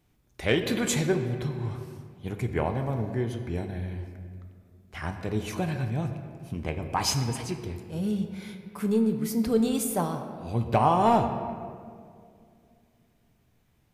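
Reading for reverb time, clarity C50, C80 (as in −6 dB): 2.2 s, 7.5 dB, 8.5 dB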